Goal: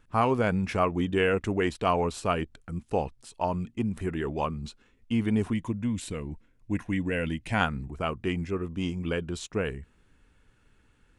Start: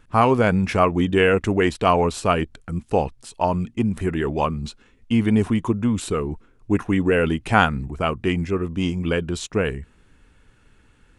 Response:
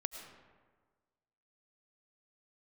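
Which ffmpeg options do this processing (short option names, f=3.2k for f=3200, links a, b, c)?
-filter_complex "[0:a]asettb=1/sr,asplit=3[a][b][c];[a]atrim=end=5.534[d];[b]atrim=start=5.53:end=7.61,asetpts=PTS-STARTPTS,afade=t=in:d=0.004:c=qsin,afade=t=out:st=2.076:d=0.004:c=qsin,equalizer=f=400:t=o:w=0.33:g=-12,equalizer=f=800:t=o:w=0.33:g=-6,equalizer=f=1.25k:t=o:w=0.33:g=-12,equalizer=f=2k:t=o:w=0.33:g=4[e];[c]atrim=start=7.606[f];[d][e]acrossfade=d=0.004:c1=hsin:c2=qsin[g];[g][f]acrossfade=d=0.004:c1=qsin:c2=hsin,volume=-7.5dB"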